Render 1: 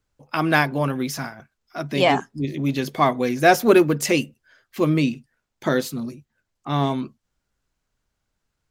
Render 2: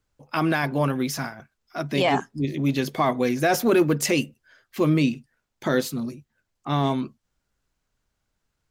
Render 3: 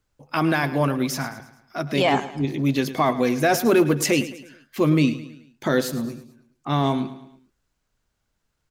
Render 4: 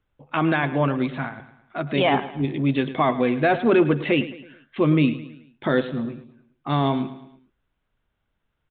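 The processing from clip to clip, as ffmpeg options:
-af "alimiter=limit=-11dB:level=0:latency=1:release=12"
-af "aecho=1:1:108|216|324|432:0.188|0.0866|0.0399|0.0183,volume=1.5dB"
-af "aresample=8000,aresample=44100"

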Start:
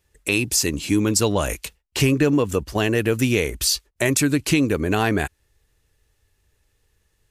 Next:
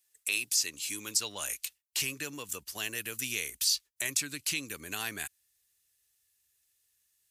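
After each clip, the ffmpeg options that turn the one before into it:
-filter_complex "[0:a]aderivative,acrossover=split=310|5700[a][b][c];[c]acompressor=threshold=-34dB:ratio=6[d];[a][b][d]amix=inputs=3:normalize=0,asubboost=boost=3.5:cutoff=240"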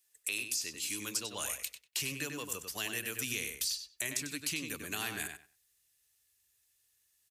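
-filter_complex "[0:a]acrossover=split=500[a][b];[b]acompressor=threshold=-32dB:ratio=6[c];[a][c]amix=inputs=2:normalize=0,asplit=2[d][e];[e]adelay=96,lowpass=f=3.8k:p=1,volume=-5.5dB,asplit=2[f][g];[g]adelay=96,lowpass=f=3.8k:p=1,volume=0.19,asplit=2[h][i];[i]adelay=96,lowpass=f=3.8k:p=1,volume=0.19[j];[f][h][j]amix=inputs=3:normalize=0[k];[d][k]amix=inputs=2:normalize=0"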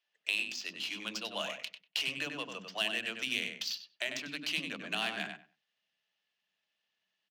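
-filter_complex "[0:a]highpass=f=180:w=0.5412,highpass=f=180:w=1.3066,equalizer=f=190:t=q:w=4:g=8,equalizer=f=410:t=q:w=4:g=-5,equalizer=f=660:t=q:w=4:g=10,equalizer=f=3k:t=q:w=4:g=8,lowpass=f=5.6k:w=0.5412,lowpass=f=5.6k:w=1.3066,acrossover=split=300[a][b];[a]adelay=50[c];[c][b]amix=inputs=2:normalize=0,adynamicsmooth=sensitivity=7.5:basefreq=3.3k,volume=1.5dB"

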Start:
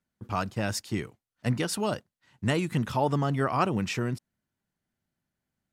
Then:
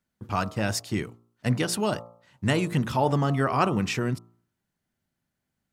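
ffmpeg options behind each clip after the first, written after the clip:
-af "bandreject=f=57.84:t=h:w=4,bandreject=f=115.68:t=h:w=4,bandreject=f=173.52:t=h:w=4,bandreject=f=231.36:t=h:w=4,bandreject=f=289.2:t=h:w=4,bandreject=f=347.04:t=h:w=4,bandreject=f=404.88:t=h:w=4,bandreject=f=462.72:t=h:w=4,bandreject=f=520.56:t=h:w=4,bandreject=f=578.4:t=h:w=4,bandreject=f=636.24:t=h:w=4,bandreject=f=694.08:t=h:w=4,bandreject=f=751.92:t=h:w=4,bandreject=f=809.76:t=h:w=4,bandreject=f=867.6:t=h:w=4,bandreject=f=925.44:t=h:w=4,bandreject=f=983.28:t=h:w=4,bandreject=f=1.04112k:t=h:w=4,bandreject=f=1.09896k:t=h:w=4,bandreject=f=1.1568k:t=h:w=4,bandreject=f=1.21464k:t=h:w=4,bandreject=f=1.27248k:t=h:w=4,bandreject=f=1.33032k:t=h:w=4,volume=3dB"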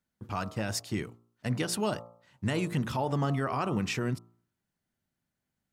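-af "alimiter=limit=-16.5dB:level=0:latency=1:release=94,volume=-3.5dB"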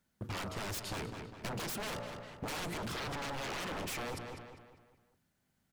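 -filter_complex "[0:a]aeval=exprs='0.0178*(abs(mod(val(0)/0.0178+3,4)-2)-1)':c=same,asplit=2[a][b];[b]adelay=200,lowpass=f=4.4k:p=1,volume=-10.5dB,asplit=2[c][d];[d]adelay=200,lowpass=f=4.4k:p=1,volume=0.44,asplit=2[e][f];[f]adelay=200,lowpass=f=4.4k:p=1,volume=0.44,asplit=2[g][h];[h]adelay=200,lowpass=f=4.4k:p=1,volume=0.44,asplit=2[i][j];[j]adelay=200,lowpass=f=4.4k:p=1,volume=0.44[k];[a][c][e][g][i][k]amix=inputs=6:normalize=0,acompressor=threshold=-43dB:ratio=6,volume=6dB"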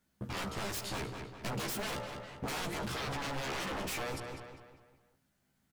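-af "aecho=1:1:15|72:0.708|0.126"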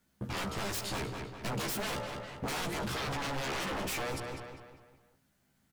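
-filter_complex "[0:a]acrossover=split=810|7900[a][b][c];[c]acrusher=bits=2:mode=log:mix=0:aa=0.000001[d];[a][b][d]amix=inputs=3:normalize=0,asoftclip=type=tanh:threshold=-31dB,volume=3.5dB"

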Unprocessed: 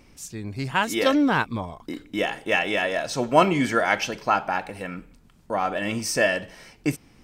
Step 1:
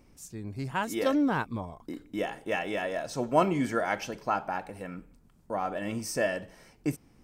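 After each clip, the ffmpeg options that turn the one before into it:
-af "equalizer=f=3.1k:t=o:w=2.2:g=-7.5,volume=-5dB"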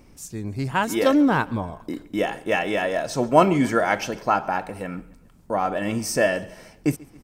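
-af "aecho=1:1:138|276|414:0.0708|0.0368|0.0191,volume=8dB"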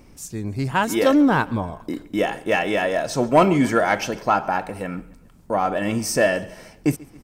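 -af "asoftclip=type=tanh:threshold=-7.5dB,volume=2.5dB"

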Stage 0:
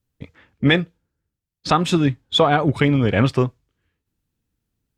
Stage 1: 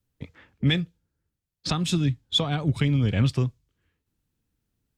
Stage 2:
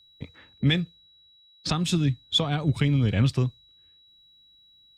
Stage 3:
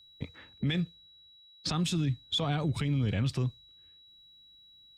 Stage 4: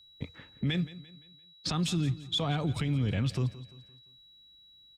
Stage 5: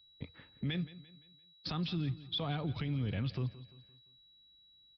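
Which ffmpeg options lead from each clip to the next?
-filter_complex "[0:a]acrossover=split=210|3000[a][b][c];[b]acompressor=threshold=-42dB:ratio=2[d];[a][d][c]amix=inputs=3:normalize=0,volume=-1dB"
-af "aeval=exprs='val(0)+0.00178*sin(2*PI*3900*n/s)':c=same"
-af "alimiter=limit=-22dB:level=0:latency=1:release=64"
-af "aecho=1:1:172|344|516|688:0.141|0.0593|0.0249|0.0105"
-af "aresample=11025,aresample=44100,volume=-6dB"

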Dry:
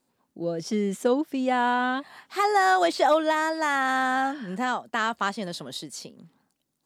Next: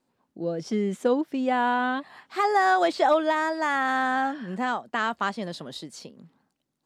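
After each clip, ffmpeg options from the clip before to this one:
-af "lowpass=f=3.8k:p=1"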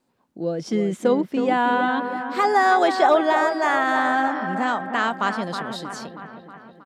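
-filter_complex "[0:a]acrossover=split=2700[a][b];[a]aecho=1:1:318|636|954|1272|1590|1908|2226|2544:0.398|0.239|0.143|0.086|0.0516|0.031|0.0186|0.0111[c];[b]volume=30dB,asoftclip=hard,volume=-30dB[d];[c][d]amix=inputs=2:normalize=0,volume=3.5dB"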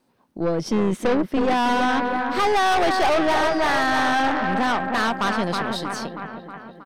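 -af "aeval=exprs='(tanh(15.8*val(0)+0.55)-tanh(0.55))/15.8':c=same,bandreject=f=7.2k:w=7.2,volume=7dB"

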